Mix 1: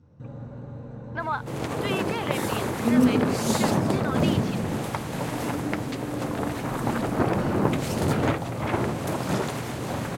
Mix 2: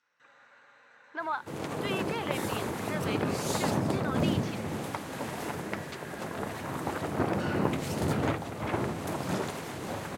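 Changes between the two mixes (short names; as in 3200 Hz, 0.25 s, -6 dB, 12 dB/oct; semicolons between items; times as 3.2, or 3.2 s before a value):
speech -4.0 dB; first sound: add resonant high-pass 1800 Hz, resonance Q 2.3; second sound -5.0 dB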